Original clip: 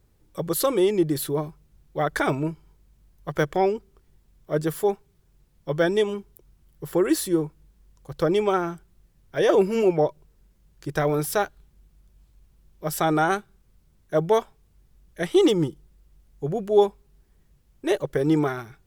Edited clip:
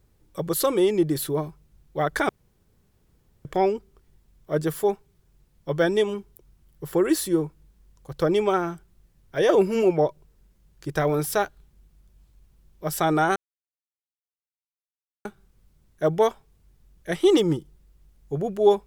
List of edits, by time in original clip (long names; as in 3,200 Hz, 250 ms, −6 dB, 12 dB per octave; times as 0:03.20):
0:02.29–0:03.45: fill with room tone
0:13.36: splice in silence 1.89 s